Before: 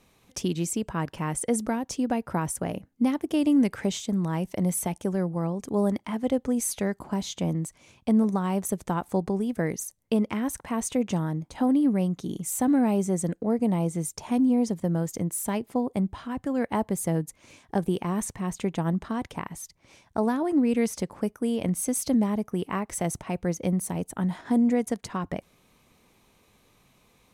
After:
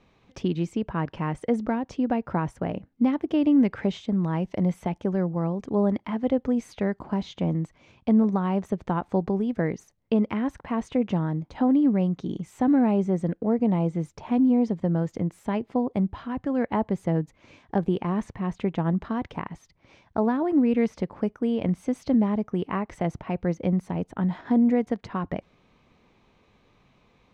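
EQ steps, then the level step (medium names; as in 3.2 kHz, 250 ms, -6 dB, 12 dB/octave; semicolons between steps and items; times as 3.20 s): dynamic bell 6.5 kHz, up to -6 dB, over -48 dBFS, Q 0.91; distance through air 190 m; +2.0 dB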